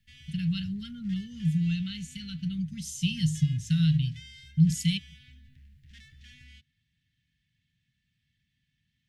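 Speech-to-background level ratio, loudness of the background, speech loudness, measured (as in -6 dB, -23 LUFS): 23.5 dB, -52.5 LUFS, -29.0 LUFS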